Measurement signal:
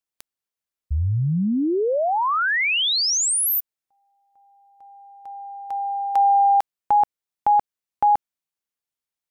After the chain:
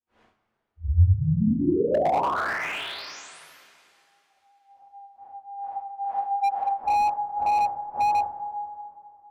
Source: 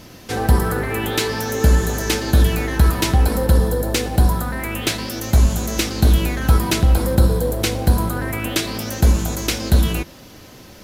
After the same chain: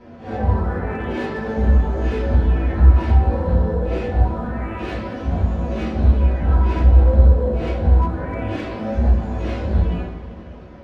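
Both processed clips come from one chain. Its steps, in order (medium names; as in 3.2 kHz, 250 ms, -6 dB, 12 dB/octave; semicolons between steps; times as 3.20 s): phase randomisation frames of 200 ms; low-pass 1.3 kHz 12 dB/octave; in parallel at +2 dB: compression 4:1, threshold -25 dBFS; on the sum: flange 0.22 Hz, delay 8.4 ms, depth 7.9 ms, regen +54%; two-slope reverb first 0.3 s, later 2.6 s, from -17 dB, DRR -4.5 dB; slew-rate limiter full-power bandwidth 170 Hz; trim -6 dB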